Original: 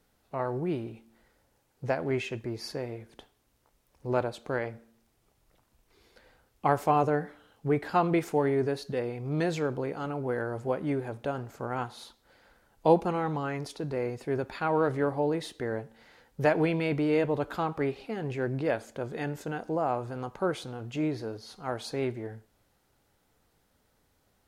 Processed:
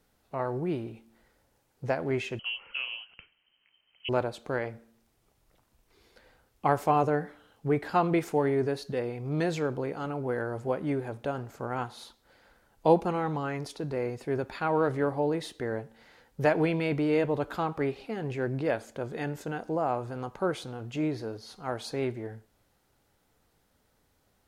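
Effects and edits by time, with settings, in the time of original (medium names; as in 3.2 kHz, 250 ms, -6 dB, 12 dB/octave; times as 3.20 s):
2.39–4.09 s: frequency inversion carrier 3.1 kHz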